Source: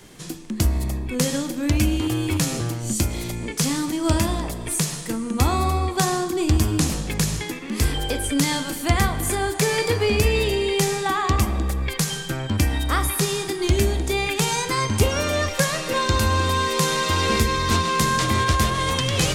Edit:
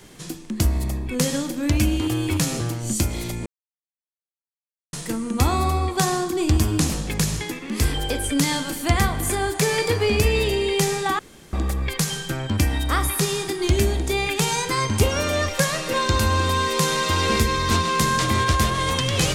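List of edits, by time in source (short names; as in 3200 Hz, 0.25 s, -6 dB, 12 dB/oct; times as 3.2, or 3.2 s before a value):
3.46–4.93 mute
11.19–11.53 room tone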